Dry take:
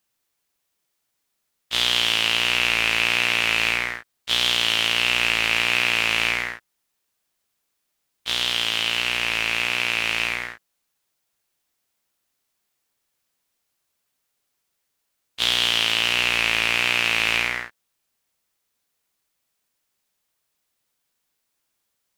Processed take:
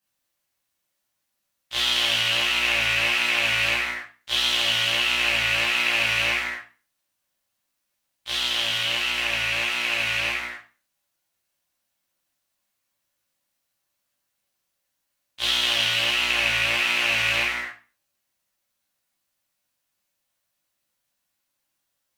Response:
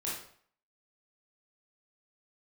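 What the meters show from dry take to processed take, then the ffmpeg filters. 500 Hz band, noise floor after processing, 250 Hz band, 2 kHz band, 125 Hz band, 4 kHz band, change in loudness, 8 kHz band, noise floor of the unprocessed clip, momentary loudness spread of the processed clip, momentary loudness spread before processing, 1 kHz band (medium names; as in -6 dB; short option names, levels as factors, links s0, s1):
-0.5 dB, -78 dBFS, -3.0 dB, -1.0 dB, -0.5 dB, -1.5 dB, -1.5 dB, -1.5 dB, -76 dBFS, 9 LU, 8 LU, -1.5 dB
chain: -filter_complex "[0:a]equalizer=f=430:t=o:w=0.22:g=-11.5[s0];[1:a]atrim=start_sample=2205,asetrate=70560,aresample=44100[s1];[s0][s1]afir=irnorm=-1:irlink=0"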